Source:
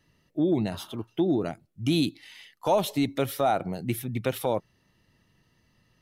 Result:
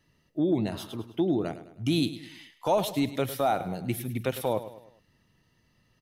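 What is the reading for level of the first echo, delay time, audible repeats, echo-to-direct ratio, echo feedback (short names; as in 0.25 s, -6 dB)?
-13.5 dB, 0.104 s, 4, -12.5 dB, 45%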